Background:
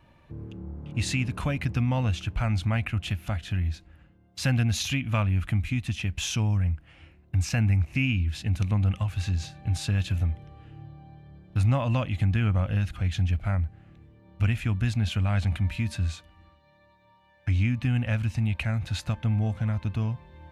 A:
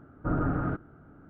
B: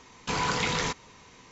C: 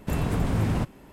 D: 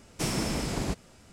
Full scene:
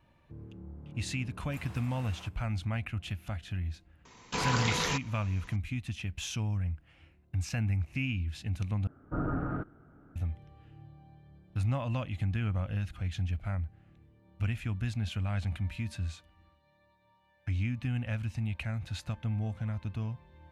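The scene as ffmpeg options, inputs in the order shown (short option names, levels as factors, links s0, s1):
-filter_complex "[0:a]volume=0.422[s0];[3:a]highpass=850[s1];[s0]asplit=2[s2][s3];[s2]atrim=end=8.874[s4];[1:a]atrim=end=1.29,asetpts=PTS-STARTPTS,volume=0.596[s5];[s3]atrim=start=10.156[s6];[s1]atrim=end=1.12,asetpts=PTS-STARTPTS,volume=0.2,afade=t=in:d=0.004:c=hsin,afade=t=out:st=1.116:d=0.004:c=hsin,adelay=1440[s7];[2:a]atrim=end=1.51,asetpts=PTS-STARTPTS,volume=0.708,afade=t=in:d=0.004:c=hsin,afade=t=out:st=1.506:d=0.004:c=hsin,adelay=178605S[s8];[s4][s5]acrossfade=d=0.004:c1=hsin:c2=hsin[s9];[s9][s6]acrossfade=d=0.004:c1=hsin:c2=hsin[s10];[s10][s7][s8]amix=inputs=3:normalize=0"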